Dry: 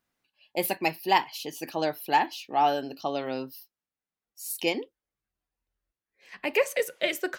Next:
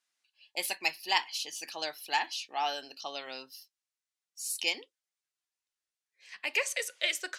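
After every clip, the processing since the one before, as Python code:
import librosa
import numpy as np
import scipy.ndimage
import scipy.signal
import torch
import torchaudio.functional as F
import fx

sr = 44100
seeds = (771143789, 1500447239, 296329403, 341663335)

y = fx.weighting(x, sr, curve='ITU-R 468')
y = y * librosa.db_to_amplitude(-7.5)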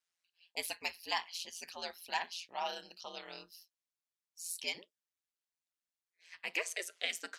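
y = x * np.sin(2.0 * np.pi * 86.0 * np.arange(len(x)) / sr)
y = y * librosa.db_to_amplitude(-3.5)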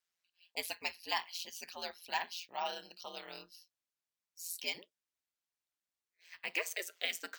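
y = np.repeat(scipy.signal.resample_poly(x, 1, 2), 2)[:len(x)]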